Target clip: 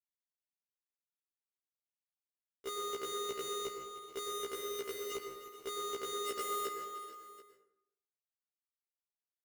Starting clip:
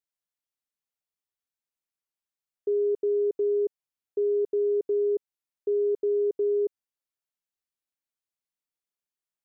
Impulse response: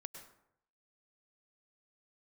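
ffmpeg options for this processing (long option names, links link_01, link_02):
-filter_complex "[0:a]equalizer=frequency=290:width_type=o:width=0.44:gain=-12,asplit=3[link_01][link_02][link_03];[link_01]afade=type=out:start_time=6.26:duration=0.02[link_04];[link_02]aeval=exprs='0.0708*(cos(1*acos(clip(val(0)/0.0708,-1,1)))-cos(1*PI/2))+0.0251*(cos(5*acos(clip(val(0)/0.0708,-1,1)))-cos(5*PI/2))+0.0178*(cos(7*acos(clip(val(0)/0.0708,-1,1)))-cos(7*PI/2))':channel_layout=same,afade=type=in:start_time=6.26:duration=0.02,afade=type=out:start_time=6.66:duration=0.02[link_05];[link_03]afade=type=in:start_time=6.66:duration=0.02[link_06];[link_04][link_05][link_06]amix=inputs=3:normalize=0,alimiter=level_in=3.5dB:limit=-24dB:level=0:latency=1:release=12,volume=-3.5dB,asettb=1/sr,asplit=3[link_07][link_08][link_09];[link_07]atrim=end=4.254[link_10];[link_08]atrim=start=4.25:end=5.12,asetpts=PTS-STARTPTS,afade=type=in:duration=0.004:curve=qsin,afade=type=out:start_time=0.866:duration=0.004:curve=qsin,asubboost=boost=5.5:cutoff=220[link_11];[link_09]atrim=start=5.116[link_12];[link_10][link_11]acrossfade=duration=0.004:curve1=hsin:curve2=qsin[link_13];[link_13][link_12]acrossfade=duration=0.004:curve1=qsin:curve2=hsin,acrusher=bits=5:mix=0:aa=0.000001,aecho=1:1:307|429|438|733:0.2|0.126|0.1|0.112[link_14];[1:a]atrim=start_sample=2205,asetrate=41454,aresample=44100[link_15];[link_14][link_15]afir=irnorm=-1:irlink=0,afftfilt=real='re*1.73*eq(mod(b,3),0)':imag='im*1.73*eq(mod(b,3),0)':win_size=2048:overlap=0.75,volume=6.5dB"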